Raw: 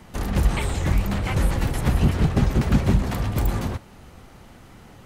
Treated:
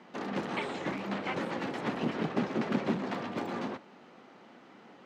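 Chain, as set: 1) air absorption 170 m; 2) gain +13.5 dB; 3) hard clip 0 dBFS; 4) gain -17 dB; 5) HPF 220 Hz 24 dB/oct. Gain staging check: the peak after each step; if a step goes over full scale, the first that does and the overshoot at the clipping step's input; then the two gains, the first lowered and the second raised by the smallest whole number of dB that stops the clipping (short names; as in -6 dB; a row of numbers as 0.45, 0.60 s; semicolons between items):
-7.0, +6.5, 0.0, -17.0, -16.5 dBFS; step 2, 6.5 dB; step 2 +6.5 dB, step 4 -10 dB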